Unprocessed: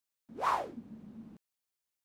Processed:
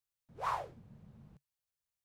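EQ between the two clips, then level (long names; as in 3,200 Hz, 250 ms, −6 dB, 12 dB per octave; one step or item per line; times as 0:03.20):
drawn EQ curve 140 Hz 0 dB, 250 Hz −24 dB, 490 Hz −10 dB
+5.0 dB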